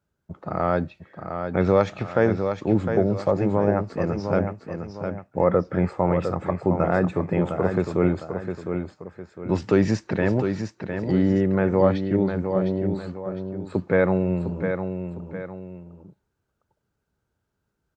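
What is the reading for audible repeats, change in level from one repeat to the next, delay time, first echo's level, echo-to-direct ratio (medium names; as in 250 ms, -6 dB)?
2, -8.0 dB, 707 ms, -7.0 dB, -6.5 dB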